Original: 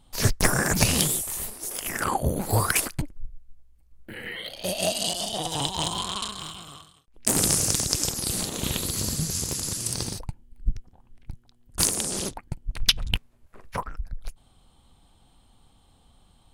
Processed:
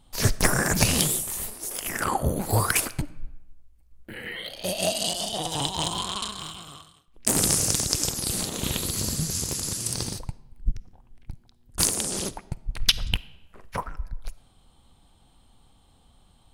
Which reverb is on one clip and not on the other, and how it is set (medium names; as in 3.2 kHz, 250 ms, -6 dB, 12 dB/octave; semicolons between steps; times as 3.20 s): algorithmic reverb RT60 0.98 s, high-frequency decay 0.75×, pre-delay 10 ms, DRR 17.5 dB